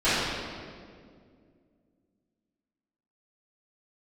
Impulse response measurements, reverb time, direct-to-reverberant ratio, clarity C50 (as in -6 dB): 2.1 s, -18.0 dB, -3.5 dB